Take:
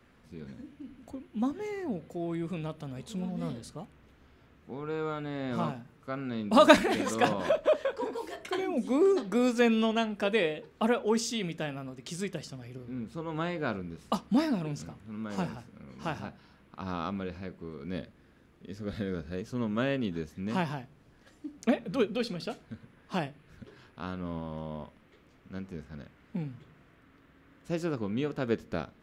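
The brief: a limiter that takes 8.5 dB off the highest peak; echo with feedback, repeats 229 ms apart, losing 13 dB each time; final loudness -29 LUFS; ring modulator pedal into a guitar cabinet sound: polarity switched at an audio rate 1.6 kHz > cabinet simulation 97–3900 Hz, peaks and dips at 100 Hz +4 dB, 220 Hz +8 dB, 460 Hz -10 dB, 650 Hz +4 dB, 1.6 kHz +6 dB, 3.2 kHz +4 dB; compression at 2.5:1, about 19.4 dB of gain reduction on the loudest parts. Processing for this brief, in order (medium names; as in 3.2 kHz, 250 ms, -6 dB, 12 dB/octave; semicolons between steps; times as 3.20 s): compression 2.5:1, threshold -43 dBFS; peak limiter -32.5 dBFS; feedback delay 229 ms, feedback 22%, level -13 dB; polarity switched at an audio rate 1.6 kHz; cabinet simulation 97–3900 Hz, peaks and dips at 100 Hz +4 dB, 220 Hz +8 dB, 460 Hz -10 dB, 650 Hz +4 dB, 1.6 kHz +6 dB, 3.2 kHz +4 dB; trim +11.5 dB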